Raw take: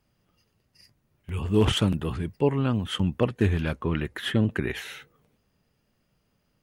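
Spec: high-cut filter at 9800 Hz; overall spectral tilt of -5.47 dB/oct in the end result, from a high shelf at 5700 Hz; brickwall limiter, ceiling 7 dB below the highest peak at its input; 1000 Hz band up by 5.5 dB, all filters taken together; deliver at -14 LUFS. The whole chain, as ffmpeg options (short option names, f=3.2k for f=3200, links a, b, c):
-af "lowpass=9.8k,equalizer=f=1k:t=o:g=7,highshelf=f=5.7k:g=-9,volume=13.5dB,alimiter=limit=-0.5dB:level=0:latency=1"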